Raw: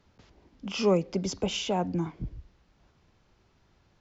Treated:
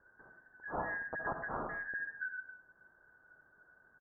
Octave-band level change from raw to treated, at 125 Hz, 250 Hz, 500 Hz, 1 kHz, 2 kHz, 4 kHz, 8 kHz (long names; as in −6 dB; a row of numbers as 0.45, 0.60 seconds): −19.5 dB, −20.5 dB, −16.0 dB, −5.0 dB, +7.0 dB, below −40 dB, can't be measured